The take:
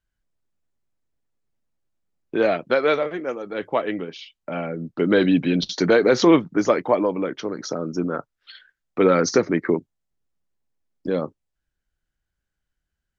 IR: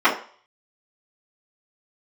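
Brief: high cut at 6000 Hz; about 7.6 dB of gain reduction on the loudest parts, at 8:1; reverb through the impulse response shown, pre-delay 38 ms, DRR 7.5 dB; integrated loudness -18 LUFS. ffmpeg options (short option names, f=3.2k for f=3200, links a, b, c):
-filter_complex "[0:a]lowpass=6k,acompressor=threshold=-19dB:ratio=8,asplit=2[a][b];[1:a]atrim=start_sample=2205,adelay=38[c];[b][c]afir=irnorm=-1:irlink=0,volume=-30dB[d];[a][d]amix=inputs=2:normalize=0,volume=8dB"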